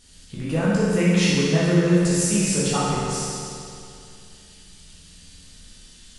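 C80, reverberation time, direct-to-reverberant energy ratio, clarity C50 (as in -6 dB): -1.5 dB, 2.5 s, -9.0 dB, -3.5 dB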